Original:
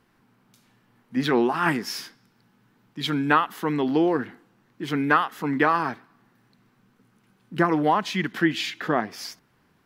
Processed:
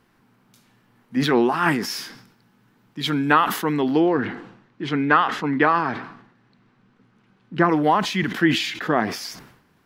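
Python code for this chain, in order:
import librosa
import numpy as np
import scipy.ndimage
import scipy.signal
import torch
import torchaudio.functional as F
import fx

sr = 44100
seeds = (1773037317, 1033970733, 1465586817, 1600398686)

y = fx.lowpass(x, sr, hz=4400.0, slope=12, at=(4.0, 7.7))
y = fx.sustainer(y, sr, db_per_s=78.0)
y = y * 10.0 ** (2.5 / 20.0)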